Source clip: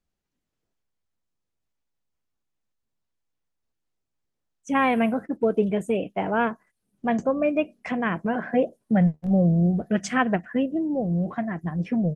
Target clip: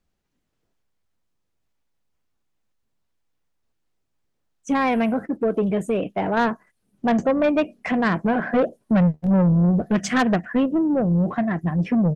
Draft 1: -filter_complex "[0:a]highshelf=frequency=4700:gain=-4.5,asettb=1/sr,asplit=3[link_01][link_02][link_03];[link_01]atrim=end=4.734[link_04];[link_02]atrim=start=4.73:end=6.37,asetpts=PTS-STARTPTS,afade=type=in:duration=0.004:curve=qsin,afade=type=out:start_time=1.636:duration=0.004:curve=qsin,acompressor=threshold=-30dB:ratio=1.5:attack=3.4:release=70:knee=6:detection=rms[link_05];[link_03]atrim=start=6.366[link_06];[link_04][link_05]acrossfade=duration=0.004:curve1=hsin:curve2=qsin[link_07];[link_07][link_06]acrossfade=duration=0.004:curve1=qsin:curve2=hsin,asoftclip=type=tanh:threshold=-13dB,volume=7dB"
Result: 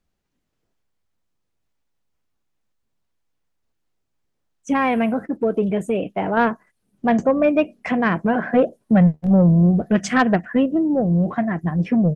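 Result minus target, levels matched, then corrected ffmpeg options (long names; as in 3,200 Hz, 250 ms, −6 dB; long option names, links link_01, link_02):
soft clipping: distortion −10 dB
-filter_complex "[0:a]highshelf=frequency=4700:gain=-4.5,asettb=1/sr,asplit=3[link_01][link_02][link_03];[link_01]atrim=end=4.734[link_04];[link_02]atrim=start=4.73:end=6.37,asetpts=PTS-STARTPTS,afade=type=in:duration=0.004:curve=qsin,afade=type=out:start_time=1.636:duration=0.004:curve=qsin,acompressor=threshold=-30dB:ratio=1.5:attack=3.4:release=70:knee=6:detection=rms[link_05];[link_03]atrim=start=6.366[link_06];[link_04][link_05]acrossfade=duration=0.004:curve1=hsin:curve2=qsin[link_07];[link_07][link_06]acrossfade=duration=0.004:curve1=qsin:curve2=hsin,asoftclip=type=tanh:threshold=-20.5dB,volume=7dB"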